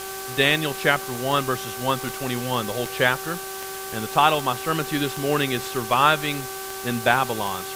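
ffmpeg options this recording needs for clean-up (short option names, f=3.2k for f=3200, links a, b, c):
-af "adeclick=t=4,bandreject=f=385.6:t=h:w=4,bandreject=f=771.2:t=h:w=4,bandreject=f=1.1568k:t=h:w=4,bandreject=f=1.5424k:t=h:w=4,afftdn=nr=30:nf=-33"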